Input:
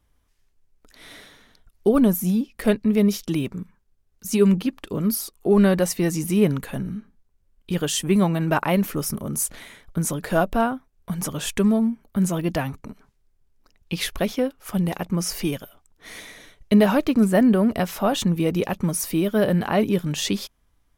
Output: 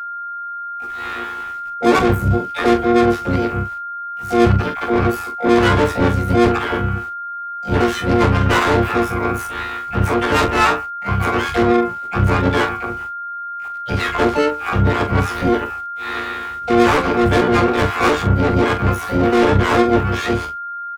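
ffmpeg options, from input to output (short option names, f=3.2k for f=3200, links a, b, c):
-filter_complex "[0:a]afftfilt=real='hypot(re,im)*cos(PI*b)':imag='0':win_size=2048:overlap=0.75,afreqshift=-75,firequalizer=gain_entry='entry(100,0);entry(180,-21);entry(260,-8);entry(390,9);entry(580,-23);entry(1100,3);entry(2800,-23);entry(6100,-30)':delay=0.05:min_phase=1,asplit=2[a][b];[b]adelay=116.6,volume=-30dB,highshelf=f=4k:g=-2.62[c];[a][c]amix=inputs=2:normalize=0,asplit=2[d][e];[e]highpass=f=720:p=1,volume=32dB,asoftclip=type=tanh:threshold=-8.5dB[f];[d][f]amix=inputs=2:normalize=0,lowpass=f=6.3k:p=1,volume=-6dB,aeval=exprs='val(0)*gte(abs(val(0)),0.00708)':c=same,asplit=2[g][h];[h]adelay=40,volume=-8dB[i];[g][i]amix=inputs=2:normalize=0,asplit=4[j][k][l][m];[k]asetrate=29433,aresample=44100,atempo=1.49831,volume=-5dB[n];[l]asetrate=58866,aresample=44100,atempo=0.749154,volume=-6dB[o];[m]asetrate=88200,aresample=44100,atempo=0.5,volume=-7dB[p];[j][n][o][p]amix=inputs=4:normalize=0,aeval=exprs='val(0)+0.0631*sin(2*PI*1400*n/s)':c=same,volume=-1dB"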